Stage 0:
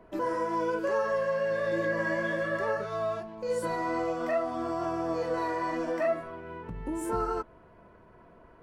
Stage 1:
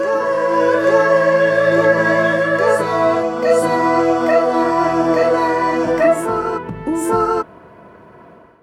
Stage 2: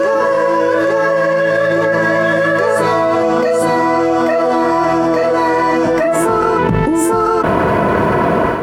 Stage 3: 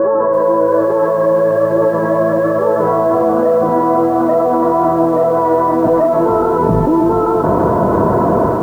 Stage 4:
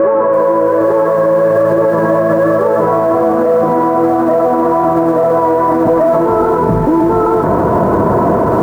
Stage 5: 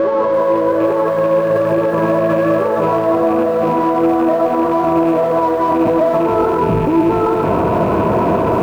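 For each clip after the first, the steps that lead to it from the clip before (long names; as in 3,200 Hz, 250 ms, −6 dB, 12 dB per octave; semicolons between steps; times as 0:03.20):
high-pass filter 110 Hz 12 dB per octave; automatic gain control gain up to 12 dB; on a send: backwards echo 839 ms −4 dB; on the sum: level +2.5 dB
in parallel at −6 dB: dead-zone distortion −33.5 dBFS; on the sum: envelope flattener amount 100%; level −7 dB
low-pass filter 1,100 Hz 24 dB per octave; in parallel at −3 dB: brickwall limiter −12 dBFS, peak gain reduction 9.5 dB; on the sum: feedback echo at a low word length 332 ms, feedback 80%, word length 6 bits, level −11.5 dB; level −2 dB
brickwall limiter −12 dBFS, peak gain reduction 10.5 dB; noise in a band 280–1,600 Hz −41 dBFS; level +8 dB
loose part that buzzes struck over −19 dBFS, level −22 dBFS; in parallel at −6 dB: soft clipping −18.5 dBFS, distortion −7 dB; on the sum: convolution reverb RT60 1.1 s, pre-delay 6 ms, DRR 9 dB; level −5 dB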